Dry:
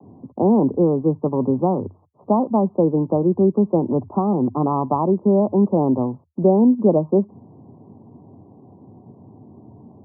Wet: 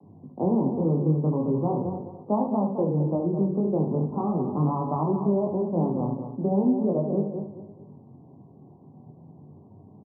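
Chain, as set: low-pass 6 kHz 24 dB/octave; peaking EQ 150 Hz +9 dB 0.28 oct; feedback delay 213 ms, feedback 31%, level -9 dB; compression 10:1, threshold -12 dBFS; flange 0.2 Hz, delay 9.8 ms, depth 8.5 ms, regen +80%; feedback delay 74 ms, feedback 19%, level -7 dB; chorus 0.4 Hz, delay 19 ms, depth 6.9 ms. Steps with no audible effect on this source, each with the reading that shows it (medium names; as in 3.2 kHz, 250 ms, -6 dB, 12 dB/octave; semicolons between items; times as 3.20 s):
low-pass 6 kHz: input has nothing above 1.2 kHz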